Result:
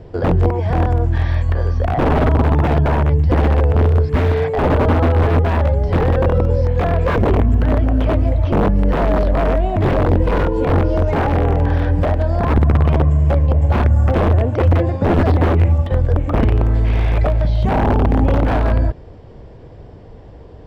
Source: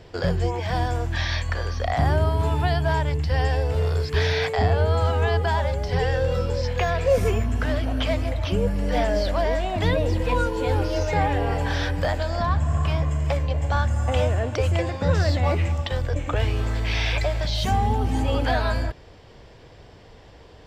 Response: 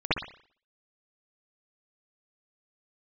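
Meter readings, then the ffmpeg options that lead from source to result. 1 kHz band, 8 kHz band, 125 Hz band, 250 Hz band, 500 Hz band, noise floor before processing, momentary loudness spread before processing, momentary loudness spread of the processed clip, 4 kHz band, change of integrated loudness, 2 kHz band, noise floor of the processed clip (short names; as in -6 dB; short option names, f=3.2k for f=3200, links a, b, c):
+5.0 dB, n/a, +8.5 dB, +10.5 dB, +6.0 dB, -47 dBFS, 4 LU, 3 LU, -5.5 dB, +7.5 dB, +1.0 dB, -38 dBFS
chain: -filter_complex "[0:a]aeval=exprs='(mod(5.62*val(0)+1,2)-1)/5.62':c=same,acrossover=split=3400[a][b];[b]acompressor=threshold=-42dB:ratio=4:attack=1:release=60[c];[a][c]amix=inputs=2:normalize=0,tiltshelf=f=1.2k:g=9.5,volume=1dB"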